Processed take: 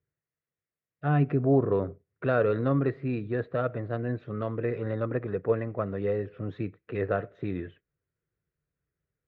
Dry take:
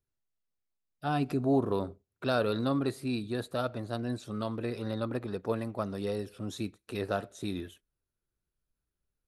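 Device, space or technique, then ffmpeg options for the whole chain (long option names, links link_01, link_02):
bass cabinet: -af "highpass=65,equalizer=frequency=98:width_type=q:width=4:gain=4,equalizer=frequency=150:width_type=q:width=4:gain=9,equalizer=frequency=220:width_type=q:width=4:gain=-5,equalizer=frequency=470:width_type=q:width=4:gain=6,equalizer=frequency=870:width_type=q:width=4:gain=-7,equalizer=frequency=1900:width_type=q:width=4:gain=6,lowpass=frequency=2300:width=0.5412,lowpass=frequency=2300:width=1.3066,volume=2.5dB"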